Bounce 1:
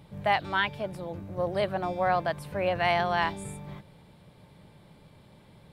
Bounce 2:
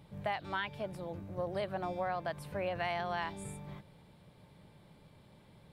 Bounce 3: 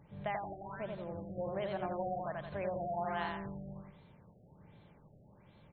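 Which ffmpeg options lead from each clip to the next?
-af "acompressor=threshold=0.0447:ratio=5,volume=0.562"
-af "aecho=1:1:87|174|261|348|435:0.668|0.281|0.118|0.0495|0.0208,afftfilt=real='re*lt(b*sr/1024,770*pow(4400/770,0.5+0.5*sin(2*PI*1.3*pts/sr)))':imag='im*lt(b*sr/1024,770*pow(4400/770,0.5+0.5*sin(2*PI*1.3*pts/sr)))':win_size=1024:overlap=0.75,volume=0.75"

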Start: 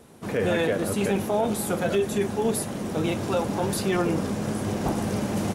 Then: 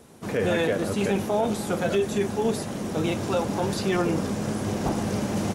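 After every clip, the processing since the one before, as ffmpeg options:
-filter_complex "[0:a]acrossover=split=6700[s0][s1];[s1]acompressor=threshold=0.00631:ratio=4:attack=1:release=60[s2];[s0][s2]amix=inputs=2:normalize=0,equalizer=f=6200:w=1.4:g=3"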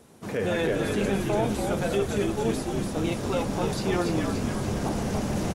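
-filter_complex "[0:a]asplit=9[s0][s1][s2][s3][s4][s5][s6][s7][s8];[s1]adelay=287,afreqshift=-69,volume=0.631[s9];[s2]adelay=574,afreqshift=-138,volume=0.355[s10];[s3]adelay=861,afreqshift=-207,volume=0.197[s11];[s4]adelay=1148,afreqshift=-276,volume=0.111[s12];[s5]adelay=1435,afreqshift=-345,volume=0.0624[s13];[s6]adelay=1722,afreqshift=-414,volume=0.0347[s14];[s7]adelay=2009,afreqshift=-483,volume=0.0195[s15];[s8]adelay=2296,afreqshift=-552,volume=0.0108[s16];[s0][s9][s10][s11][s12][s13][s14][s15][s16]amix=inputs=9:normalize=0,volume=0.708"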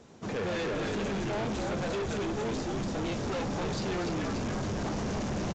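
-af "asoftclip=type=hard:threshold=0.0316,aresample=16000,aresample=44100"

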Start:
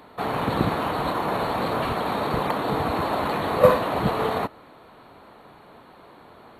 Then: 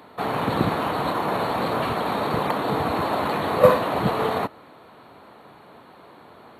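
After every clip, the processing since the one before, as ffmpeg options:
-af "highpass=81,volume=1.12"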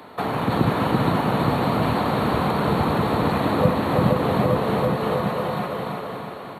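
-filter_complex "[0:a]asplit=2[s0][s1];[s1]aecho=0:1:470|869.5|1209|1498|1743:0.631|0.398|0.251|0.158|0.1[s2];[s0][s2]amix=inputs=2:normalize=0,acrossover=split=270[s3][s4];[s4]acompressor=threshold=0.0398:ratio=6[s5];[s3][s5]amix=inputs=2:normalize=0,asplit=2[s6][s7];[s7]aecho=0:1:334|668|1002|1336|1670|2004:0.668|0.314|0.148|0.0694|0.0326|0.0153[s8];[s6][s8]amix=inputs=2:normalize=0,volume=1.68"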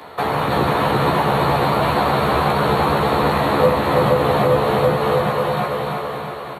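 -filter_complex "[0:a]equalizer=f=250:t=o:w=0.8:g=-8.5,acrossover=split=220[s0][s1];[s0]asoftclip=type=tanh:threshold=0.0398[s2];[s2][s1]amix=inputs=2:normalize=0,asplit=2[s3][s4];[s4]adelay=14,volume=0.708[s5];[s3][s5]amix=inputs=2:normalize=0,volume=1.68"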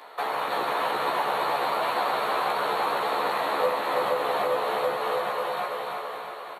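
-af "highpass=540,volume=0.473"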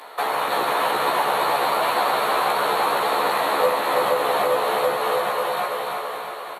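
-af "equalizer=f=11000:t=o:w=1.3:g=7,volume=1.78"

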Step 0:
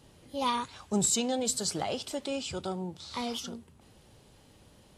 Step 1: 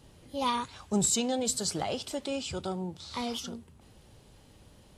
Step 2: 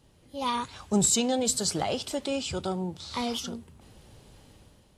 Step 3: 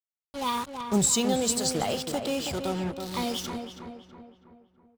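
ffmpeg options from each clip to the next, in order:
-af "lowshelf=f=83:g=6.5"
-af "dynaudnorm=f=110:g=9:m=2.66,volume=0.562"
-filter_complex "[0:a]acrusher=bits=5:mix=0:aa=0.5,asplit=2[s0][s1];[s1]adelay=325,lowpass=f=2200:p=1,volume=0.473,asplit=2[s2][s3];[s3]adelay=325,lowpass=f=2200:p=1,volume=0.49,asplit=2[s4][s5];[s5]adelay=325,lowpass=f=2200:p=1,volume=0.49,asplit=2[s6][s7];[s7]adelay=325,lowpass=f=2200:p=1,volume=0.49,asplit=2[s8][s9];[s9]adelay=325,lowpass=f=2200:p=1,volume=0.49,asplit=2[s10][s11];[s11]adelay=325,lowpass=f=2200:p=1,volume=0.49[s12];[s0][s2][s4][s6][s8][s10][s12]amix=inputs=7:normalize=0"

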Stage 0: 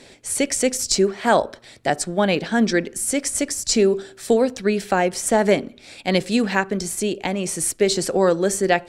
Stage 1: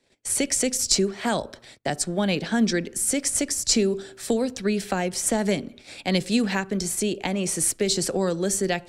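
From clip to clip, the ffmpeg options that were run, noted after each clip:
-filter_complex "[0:a]agate=range=0.0631:threshold=0.00708:ratio=16:detection=peak,acrossover=split=240|3000[s0][s1][s2];[s1]acompressor=threshold=0.0447:ratio=3[s3];[s0][s3][s2]amix=inputs=3:normalize=0"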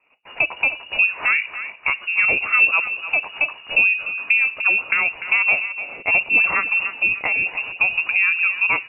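-af "aecho=1:1:297|594|891:0.251|0.0728|0.0211,lowpass=f=2500:t=q:w=0.5098,lowpass=f=2500:t=q:w=0.6013,lowpass=f=2500:t=q:w=0.9,lowpass=f=2500:t=q:w=2.563,afreqshift=-2900,volume=1.88"

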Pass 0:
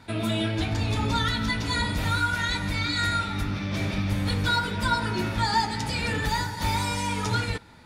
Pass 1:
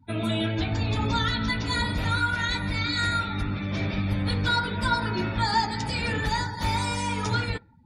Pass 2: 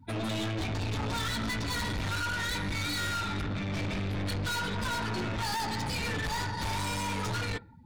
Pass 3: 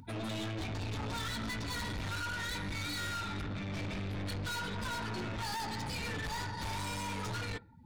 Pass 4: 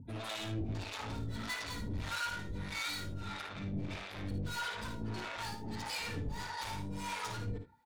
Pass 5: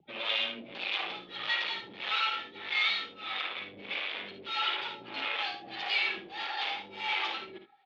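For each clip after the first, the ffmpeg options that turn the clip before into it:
-af "afftdn=nr=31:nf=-42"
-af "aeval=exprs='(tanh(50.1*val(0)+0.25)-tanh(0.25))/50.1':c=same,volume=1.5"
-af "acompressor=mode=upward:threshold=0.00891:ratio=2.5,volume=0.531"
-filter_complex "[0:a]acrossover=split=520[s0][s1];[s0]aeval=exprs='val(0)*(1-1/2+1/2*cos(2*PI*1.6*n/s))':c=same[s2];[s1]aeval=exprs='val(0)*(1-1/2-1/2*cos(2*PI*1.6*n/s))':c=same[s3];[s2][s3]amix=inputs=2:normalize=0,asplit=2[s4][s5];[s5]aecho=0:1:55|76:0.398|0.251[s6];[s4][s6]amix=inputs=2:normalize=0,volume=1.26"
-af "highshelf=f=2700:g=8.5,aexciter=amount=2.9:drive=4.2:freq=2400,highpass=f=420:t=q:w=0.5412,highpass=f=420:t=q:w=1.307,lowpass=f=3500:t=q:w=0.5176,lowpass=f=3500:t=q:w=0.7071,lowpass=f=3500:t=q:w=1.932,afreqshift=-93,volume=1.5"

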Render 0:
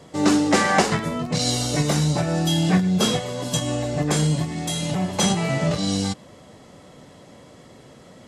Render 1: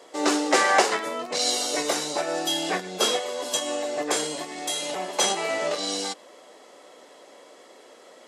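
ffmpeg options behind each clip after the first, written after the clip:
-af "highpass=f=360:w=0.5412,highpass=f=360:w=1.3066"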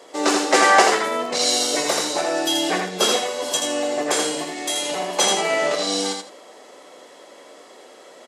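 -af "aecho=1:1:82|164|246:0.596|0.125|0.0263,volume=1.5"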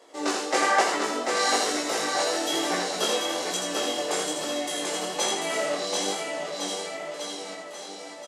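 -af "aecho=1:1:740|1406|2005|2545|3030:0.631|0.398|0.251|0.158|0.1,flanger=delay=17:depth=5.4:speed=1.1,volume=0.562"

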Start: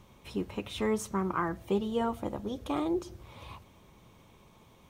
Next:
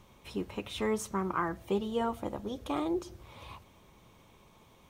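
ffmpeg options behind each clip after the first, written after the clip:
-af "equalizer=f=130:w=0.43:g=-3"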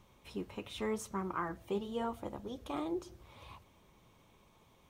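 -af "flanger=delay=0.8:depth=7.3:regen=-77:speed=0.85:shape=triangular,volume=0.891"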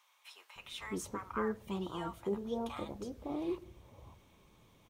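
-filter_complex "[0:a]acrossover=split=870[s0][s1];[s0]adelay=560[s2];[s2][s1]amix=inputs=2:normalize=0,volume=1.12"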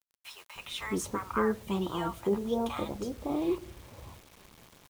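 -af "acrusher=bits=9:mix=0:aa=0.000001,volume=2.24"

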